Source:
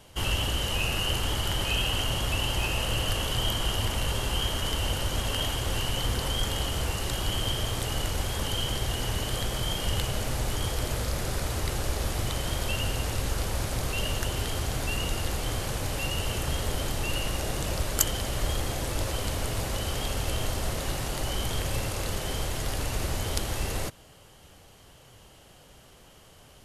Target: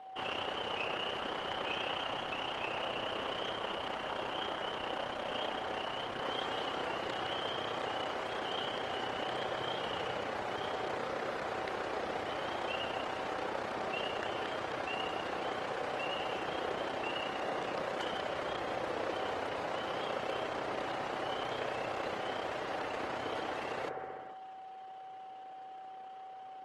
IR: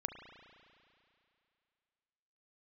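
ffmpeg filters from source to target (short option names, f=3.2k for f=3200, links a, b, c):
-filter_complex "[0:a]aeval=exprs='0.0841*(abs(mod(val(0)/0.0841+3,4)-2)-1)':c=same,tremolo=f=31:d=0.519,aeval=exprs='val(0)+0.00398*sin(2*PI*760*n/s)':c=same,highpass=390,lowpass=2.2k[a];[1:a]atrim=start_sample=2205,afade=t=out:st=0.31:d=0.01,atrim=end_sample=14112,asetrate=23814,aresample=44100[b];[a][b]afir=irnorm=-1:irlink=0" -ar 48000 -c:a libopus -b:a 20k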